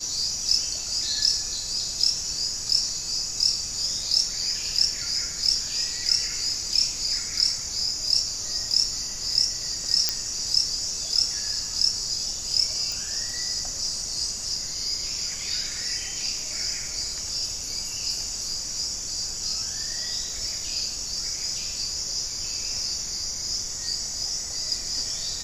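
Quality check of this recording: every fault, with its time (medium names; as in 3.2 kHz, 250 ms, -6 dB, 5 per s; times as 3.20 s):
10.09 s: pop -5 dBFS
12.92 s: pop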